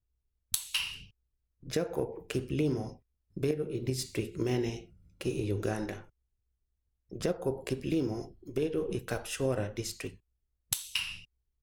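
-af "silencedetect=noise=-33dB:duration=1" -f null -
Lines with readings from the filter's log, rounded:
silence_start: 5.94
silence_end: 7.13 | silence_duration: 1.19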